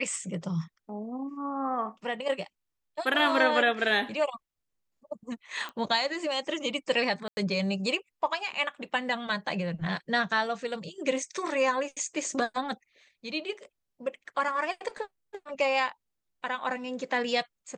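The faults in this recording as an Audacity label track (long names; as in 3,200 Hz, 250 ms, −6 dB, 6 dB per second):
5.690000	5.690000	click −25 dBFS
7.280000	7.370000	drop-out 90 ms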